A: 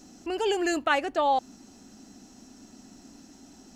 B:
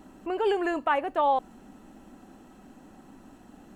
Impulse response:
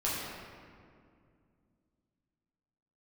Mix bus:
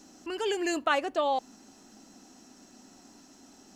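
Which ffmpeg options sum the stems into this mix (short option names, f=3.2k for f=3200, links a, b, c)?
-filter_complex "[0:a]volume=-1.5dB[a];[1:a]volume=-8dB[b];[a][b]amix=inputs=2:normalize=0,lowshelf=f=190:g=-11.5"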